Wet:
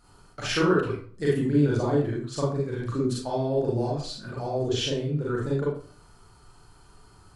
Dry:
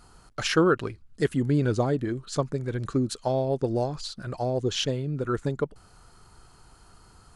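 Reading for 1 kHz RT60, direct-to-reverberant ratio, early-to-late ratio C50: 0.45 s, -5.5 dB, 1.5 dB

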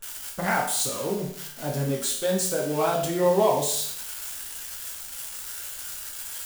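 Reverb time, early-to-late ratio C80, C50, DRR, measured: 0.60 s, 8.5 dB, 5.0 dB, -3.0 dB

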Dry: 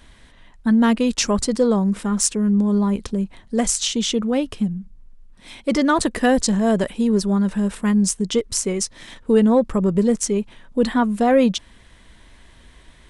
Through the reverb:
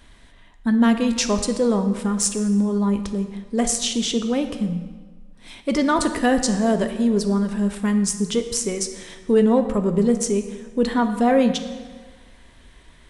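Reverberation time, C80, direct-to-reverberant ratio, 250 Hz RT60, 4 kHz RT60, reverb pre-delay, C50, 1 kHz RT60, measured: 1.5 s, 11.0 dB, 7.0 dB, 1.5 s, 1.2 s, 3 ms, 9.5 dB, 1.5 s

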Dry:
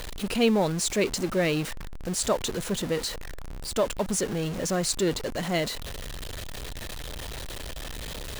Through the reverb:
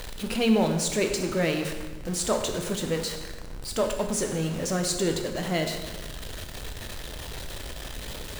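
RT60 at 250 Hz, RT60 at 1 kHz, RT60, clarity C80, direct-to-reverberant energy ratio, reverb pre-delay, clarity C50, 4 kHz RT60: 1.4 s, 1.2 s, 1.3 s, 8.0 dB, 4.0 dB, 8 ms, 6.5 dB, 1.1 s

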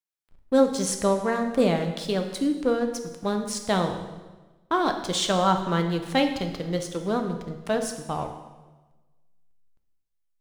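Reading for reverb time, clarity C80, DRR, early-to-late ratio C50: 1.2 s, 9.5 dB, 5.0 dB, 8.0 dB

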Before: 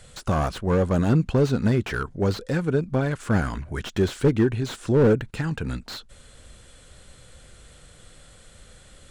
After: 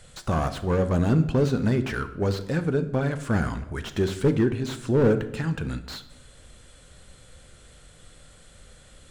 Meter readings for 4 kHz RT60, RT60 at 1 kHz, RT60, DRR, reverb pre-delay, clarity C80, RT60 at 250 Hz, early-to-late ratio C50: 0.65 s, 0.80 s, 0.85 s, 10.0 dB, 10 ms, 16.0 dB, 1.0 s, 13.0 dB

